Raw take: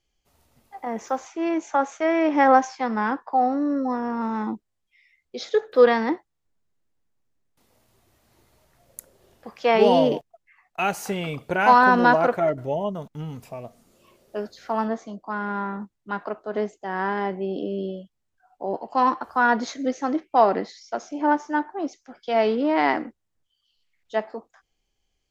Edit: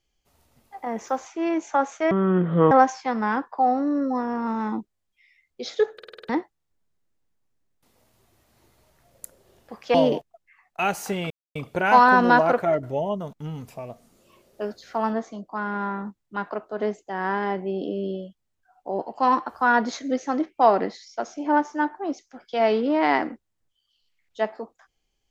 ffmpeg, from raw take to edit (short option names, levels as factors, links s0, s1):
-filter_complex "[0:a]asplit=12[s0][s1][s2][s3][s4][s5][s6][s7][s8][s9][s10][s11];[s0]atrim=end=2.114[s12];[s1]atrim=start=2.11:end=2.46,asetpts=PTS-STARTPTS,asetrate=25578,aresample=44100,atrim=end_sample=26612,asetpts=PTS-STARTPTS[s13];[s2]atrim=start=2.456:end=5.742[s14];[s3]atrim=start=5.688:end=5.742[s15];[s4]atrim=start=5.688:end=5.742[s16];[s5]atrim=start=5.688:end=5.742[s17];[s6]atrim=start=5.688:end=5.742[s18];[s7]atrim=start=5.688:end=5.742[s19];[s8]atrim=start=5.688:end=5.742[s20];[s9]atrim=start=6.038:end=9.692[s21];[s10]atrim=start=9.938:end=11.3,asetpts=PTS-STARTPTS,afade=t=out:st=1.358:d=0.004:c=hsin,apad=pad_dur=0.25[s22];[s11]atrim=start=11.3,asetpts=PTS-STARTPTS,afade=t=in:d=0.004:c=hsin[s23];[s12][s13]acrossfade=d=0.004:c1=hsin:c2=hsin[s24];[s24][s14]acrossfade=d=0.004:c1=hsin:c2=hsin[s25];[s25][s15]acrossfade=d=0.004:c1=hsin:c2=hsin[s26];[s26][s16]acrossfade=d=0.004:c1=hsin:c2=hsin[s27];[s27][s17]acrossfade=d=0.004:c1=hsin:c2=hsin[s28];[s28][s18]acrossfade=d=0.004:c1=hsin:c2=hsin[s29];[s29][s19]acrossfade=d=0.004:c1=hsin:c2=hsin[s30];[s30][s20]acrossfade=d=0.004:c1=hsin:c2=hsin[s31];[s31][s21]acrossfade=d=0.004:c1=hsin:c2=hsin[s32];[s22][s23]concat=n=2:v=0:a=1[s33];[s32][s33]acrossfade=d=0.004:c1=hsin:c2=hsin"